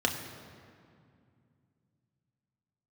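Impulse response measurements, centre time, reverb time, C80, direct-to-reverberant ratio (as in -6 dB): 39 ms, 2.3 s, 8.0 dB, 1.5 dB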